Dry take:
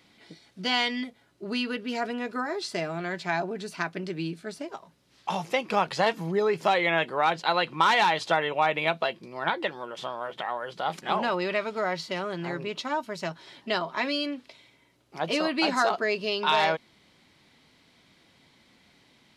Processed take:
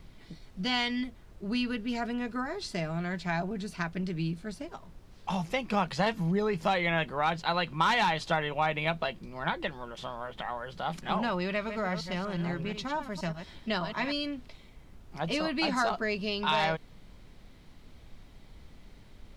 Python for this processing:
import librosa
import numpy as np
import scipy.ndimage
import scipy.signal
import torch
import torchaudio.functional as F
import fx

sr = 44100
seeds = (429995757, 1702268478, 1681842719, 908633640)

y = fx.reverse_delay(x, sr, ms=120, wet_db=-9.0, at=(11.53, 14.12))
y = fx.low_shelf_res(y, sr, hz=260.0, db=6.5, q=1.5)
y = fx.dmg_noise_colour(y, sr, seeds[0], colour='brown', level_db=-46.0)
y = F.gain(torch.from_numpy(y), -4.0).numpy()